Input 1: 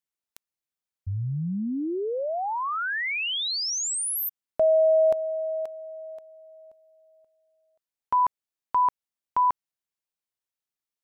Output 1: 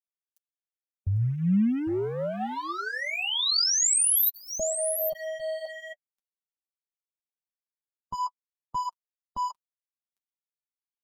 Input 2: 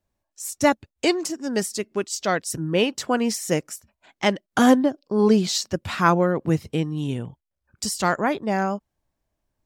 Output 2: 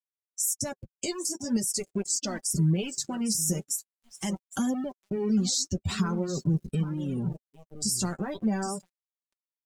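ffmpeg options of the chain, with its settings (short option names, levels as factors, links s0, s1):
-filter_complex "[0:a]highshelf=f=8600:g=3,acompressor=threshold=0.0562:ratio=8:attack=0.58:release=325:knee=6:detection=peak,bass=f=250:g=14,treble=f=4000:g=15,asplit=2[s0][s1];[s1]aecho=0:1:802:0.211[s2];[s0][s2]amix=inputs=2:normalize=0,aeval=exprs='val(0)*gte(abs(val(0)),0.0266)':c=same,flanger=delay=3.1:depth=8.7:regen=-20:speed=0.43:shape=triangular,alimiter=limit=0.126:level=0:latency=1:release=46,afftdn=nr=23:nf=-39,aecho=1:1:5.2:0.34"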